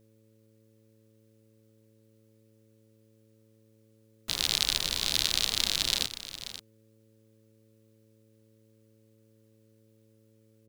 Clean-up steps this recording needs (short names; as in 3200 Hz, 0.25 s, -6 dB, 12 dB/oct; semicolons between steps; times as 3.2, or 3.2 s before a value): de-hum 109.8 Hz, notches 5; inverse comb 0.534 s -12.5 dB